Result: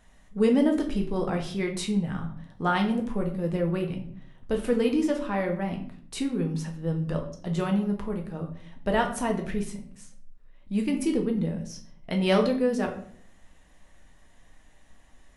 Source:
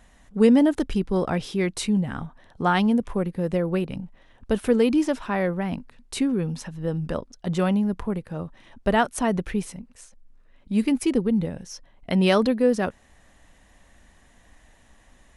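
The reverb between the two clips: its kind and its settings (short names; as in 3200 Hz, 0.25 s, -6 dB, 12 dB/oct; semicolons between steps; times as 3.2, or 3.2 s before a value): shoebox room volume 72 m³, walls mixed, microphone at 0.57 m; gain -5.5 dB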